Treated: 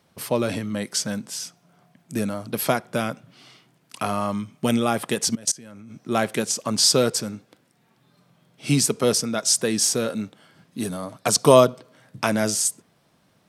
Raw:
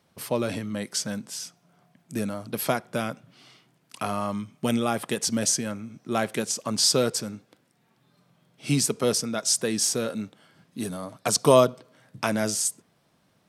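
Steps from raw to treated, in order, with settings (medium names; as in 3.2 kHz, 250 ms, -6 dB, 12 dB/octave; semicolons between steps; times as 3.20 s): 5.35–5.91 s: level held to a coarse grid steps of 23 dB; trim +3.5 dB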